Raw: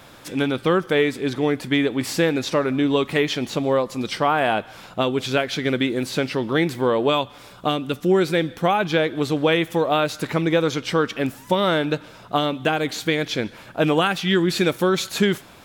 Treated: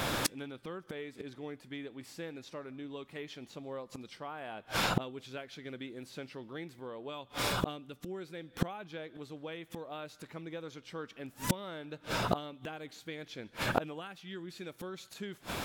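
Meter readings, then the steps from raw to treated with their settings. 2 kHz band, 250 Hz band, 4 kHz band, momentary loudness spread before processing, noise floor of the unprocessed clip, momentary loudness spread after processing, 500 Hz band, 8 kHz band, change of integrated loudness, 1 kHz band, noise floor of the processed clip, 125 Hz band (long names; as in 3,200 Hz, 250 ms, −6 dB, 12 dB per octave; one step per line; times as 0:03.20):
−16.0 dB, −19.0 dB, −15.0 dB, 6 LU, −45 dBFS, 12 LU, −20.5 dB, −9.5 dB, −18.0 dB, −16.0 dB, −61 dBFS, −15.0 dB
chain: speech leveller within 4 dB 0.5 s
gate with flip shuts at −23 dBFS, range −32 dB
level +9 dB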